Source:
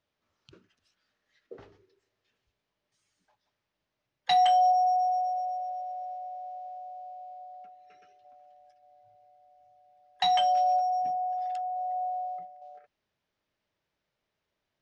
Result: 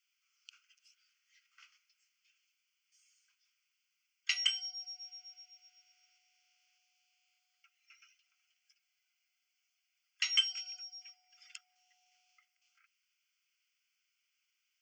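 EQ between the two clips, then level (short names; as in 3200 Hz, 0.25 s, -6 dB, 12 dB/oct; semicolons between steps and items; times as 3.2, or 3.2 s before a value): steep high-pass 1500 Hz 48 dB/oct; high shelf 4800 Hz +5 dB; fixed phaser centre 2600 Hz, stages 8; +6.0 dB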